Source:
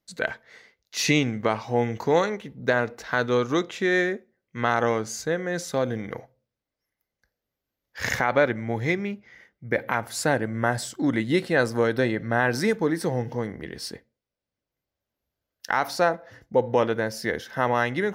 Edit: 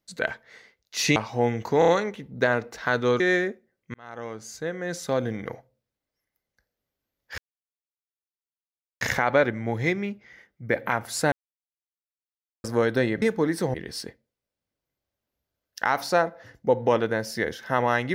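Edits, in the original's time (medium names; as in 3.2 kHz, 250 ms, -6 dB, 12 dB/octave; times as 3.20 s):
1.16–1.51 s: delete
2.14 s: stutter 0.03 s, 4 plays
3.46–3.85 s: delete
4.59–5.86 s: fade in linear
8.03 s: insert silence 1.63 s
10.34–11.66 s: mute
12.24–12.65 s: delete
13.17–13.61 s: delete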